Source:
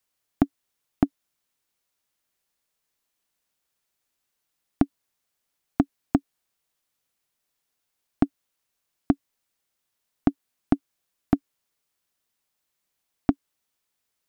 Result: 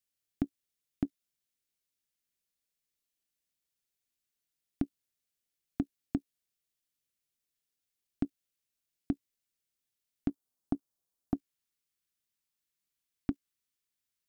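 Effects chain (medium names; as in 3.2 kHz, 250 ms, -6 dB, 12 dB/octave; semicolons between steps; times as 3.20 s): peaking EQ 930 Hz -11.5 dB 1.5 oct, from 10.29 s 2.1 kHz, from 11.34 s 740 Hz; level held to a coarse grid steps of 15 dB; trim +2.5 dB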